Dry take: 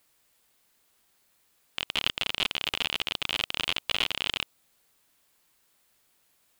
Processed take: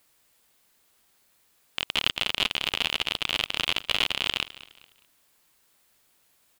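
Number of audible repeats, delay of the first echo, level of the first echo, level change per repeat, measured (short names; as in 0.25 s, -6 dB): 2, 0.207 s, -18.0 dB, -9.0 dB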